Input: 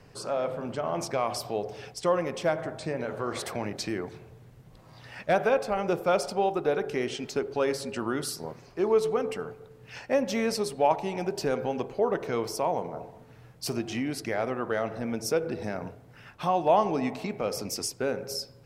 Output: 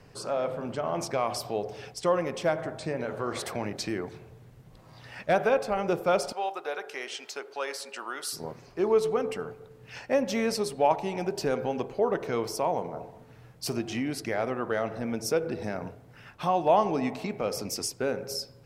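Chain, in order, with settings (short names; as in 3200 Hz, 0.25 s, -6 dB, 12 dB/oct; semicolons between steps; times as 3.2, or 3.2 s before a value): 6.32–8.33 HPF 770 Hz 12 dB/oct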